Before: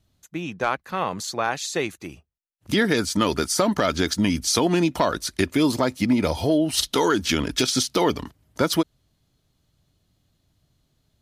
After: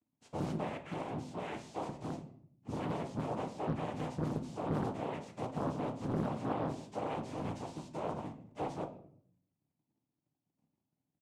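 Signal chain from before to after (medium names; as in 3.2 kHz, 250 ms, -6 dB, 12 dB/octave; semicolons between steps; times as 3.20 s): partials quantised in pitch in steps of 2 st; band-stop 360 Hz, Q 12; comb 1.9 ms, depth 44%; compression 12:1, threshold -31 dBFS, peak gain reduction 20.5 dB; waveshaping leveller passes 5; boxcar filter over 41 samples; noise-vocoded speech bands 4; simulated room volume 94 m³, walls mixed, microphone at 0.43 m; loudspeaker Doppler distortion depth 0.93 ms; trim -9 dB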